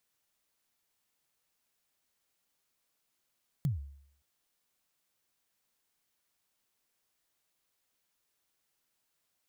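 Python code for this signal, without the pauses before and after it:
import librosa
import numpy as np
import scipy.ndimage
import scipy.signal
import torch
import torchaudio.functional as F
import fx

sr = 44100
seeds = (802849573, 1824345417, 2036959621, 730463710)

y = fx.drum_kick(sr, seeds[0], length_s=0.57, level_db=-24.0, start_hz=160.0, end_hz=70.0, sweep_ms=138.0, decay_s=0.66, click=True)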